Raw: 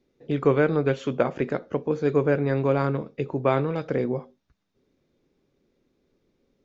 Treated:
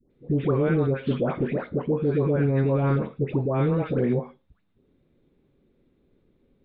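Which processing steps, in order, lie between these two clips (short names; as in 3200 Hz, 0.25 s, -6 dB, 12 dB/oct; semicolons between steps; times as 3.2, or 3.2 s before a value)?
steep low-pass 3900 Hz 48 dB/oct; low shelf 290 Hz +9 dB; limiter -13.5 dBFS, peak gain reduction 9.5 dB; dispersion highs, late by 0.11 s, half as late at 980 Hz; on a send: reverb, pre-delay 37 ms, DRR 23 dB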